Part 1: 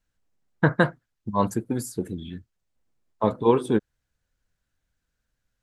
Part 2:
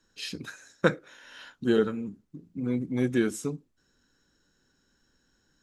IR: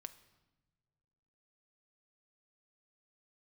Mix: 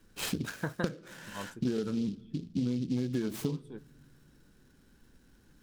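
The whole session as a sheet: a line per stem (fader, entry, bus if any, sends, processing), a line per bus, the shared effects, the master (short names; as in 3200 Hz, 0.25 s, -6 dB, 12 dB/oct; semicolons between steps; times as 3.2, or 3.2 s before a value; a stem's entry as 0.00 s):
-7.5 dB, 0.00 s, no send, auto duck -16 dB, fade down 1.80 s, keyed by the second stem
-0.5 dB, 0.00 s, send -5.5 dB, compressor, threshold -25 dBFS, peak gain reduction 9.5 dB; low shelf 420 Hz +10.5 dB; noise-modulated delay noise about 3800 Hz, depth 0.042 ms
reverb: on, pre-delay 5 ms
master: compressor 8:1, threshold -28 dBFS, peak gain reduction 14 dB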